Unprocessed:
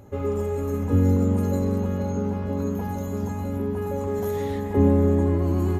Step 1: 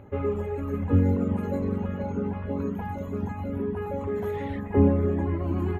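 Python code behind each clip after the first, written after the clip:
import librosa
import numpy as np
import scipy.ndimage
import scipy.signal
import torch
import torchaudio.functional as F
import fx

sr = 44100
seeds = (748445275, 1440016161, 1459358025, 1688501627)

y = fx.dereverb_blind(x, sr, rt60_s=1.1)
y = fx.high_shelf_res(y, sr, hz=3700.0, db=-13.5, q=1.5)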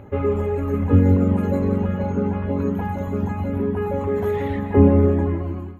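y = fx.fade_out_tail(x, sr, length_s=0.73)
y = y + 10.0 ** (-11.5 / 20.0) * np.pad(y, (int(173 * sr / 1000.0), 0))[:len(y)]
y = F.gain(torch.from_numpy(y), 6.0).numpy()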